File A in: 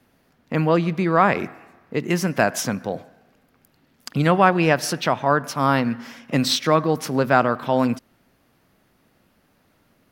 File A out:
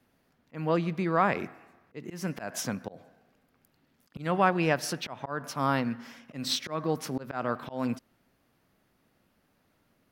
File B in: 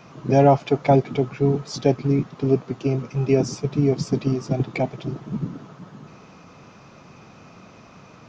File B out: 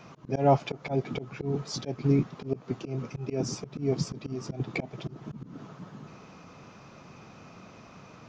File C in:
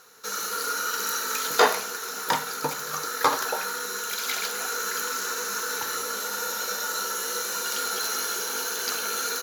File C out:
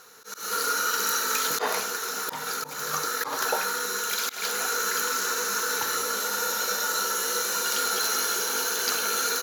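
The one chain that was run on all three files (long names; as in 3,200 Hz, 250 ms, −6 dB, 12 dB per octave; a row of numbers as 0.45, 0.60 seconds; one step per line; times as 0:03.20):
volume swells 193 ms
normalise the peak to −9 dBFS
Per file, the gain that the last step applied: −8.0, −3.0, +2.5 decibels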